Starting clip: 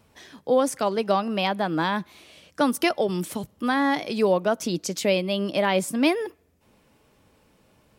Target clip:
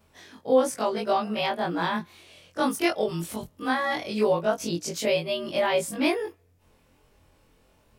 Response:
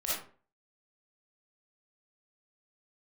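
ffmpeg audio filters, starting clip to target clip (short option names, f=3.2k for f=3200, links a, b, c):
-af "afftfilt=real='re':imag='-im':win_size=2048:overlap=0.75,asubboost=boost=3.5:cutoff=78,volume=2.5dB"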